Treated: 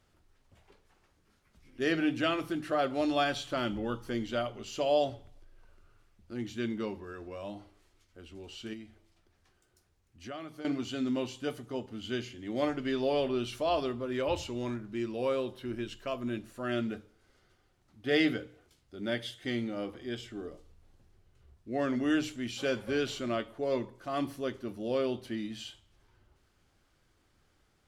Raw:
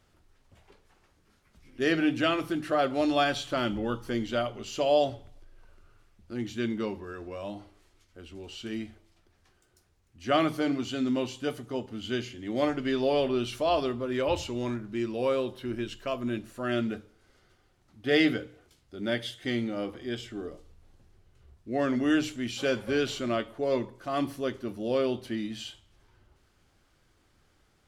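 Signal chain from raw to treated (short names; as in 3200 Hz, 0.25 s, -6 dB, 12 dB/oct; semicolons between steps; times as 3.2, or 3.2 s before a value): 8.73–10.65 compressor 3:1, threshold -41 dBFS, peak gain reduction 15.5 dB; gain -3.5 dB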